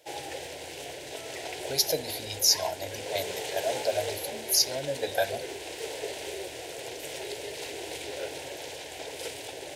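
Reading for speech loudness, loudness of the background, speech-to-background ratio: -28.0 LUFS, -37.0 LUFS, 9.0 dB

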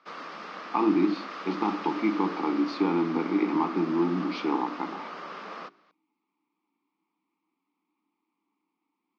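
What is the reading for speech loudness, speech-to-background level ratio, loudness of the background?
-28.0 LUFS, 11.0 dB, -39.0 LUFS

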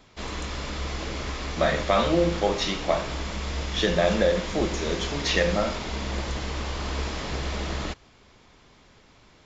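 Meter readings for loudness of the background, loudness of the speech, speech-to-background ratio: -32.0 LUFS, -25.5 LUFS, 6.5 dB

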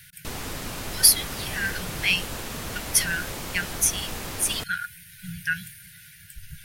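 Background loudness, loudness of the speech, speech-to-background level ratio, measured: -34.0 LUFS, -24.0 LUFS, 10.0 dB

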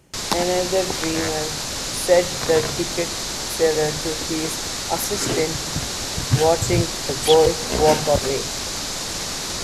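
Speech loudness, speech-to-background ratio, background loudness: -21.5 LUFS, 3.5 dB, -25.0 LUFS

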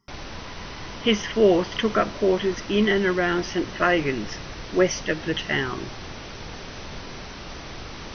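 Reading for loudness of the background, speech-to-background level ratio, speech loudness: -37.0 LUFS, 14.0 dB, -23.0 LUFS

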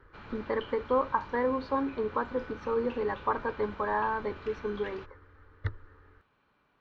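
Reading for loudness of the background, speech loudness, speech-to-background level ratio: -47.0 LUFS, -32.0 LUFS, 15.0 dB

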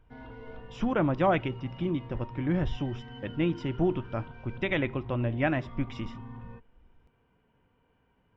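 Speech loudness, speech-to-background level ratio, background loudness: -30.5 LUFS, 15.0 dB, -45.5 LUFS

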